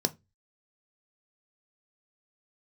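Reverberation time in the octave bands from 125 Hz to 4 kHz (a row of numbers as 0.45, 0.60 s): 0.40, 0.30, 0.25, 0.20, 0.20, 0.20 s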